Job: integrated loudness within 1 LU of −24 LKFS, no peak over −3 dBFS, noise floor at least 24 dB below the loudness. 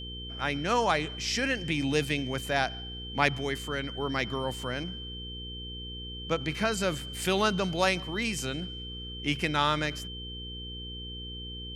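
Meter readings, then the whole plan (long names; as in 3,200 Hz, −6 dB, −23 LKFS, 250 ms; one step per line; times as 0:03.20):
mains hum 60 Hz; hum harmonics up to 480 Hz; level of the hum −40 dBFS; interfering tone 3,100 Hz; level of the tone −40 dBFS; integrated loudness −30.5 LKFS; sample peak −7.5 dBFS; target loudness −24.0 LKFS
→ hum removal 60 Hz, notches 8
notch filter 3,100 Hz, Q 30
level +6.5 dB
brickwall limiter −3 dBFS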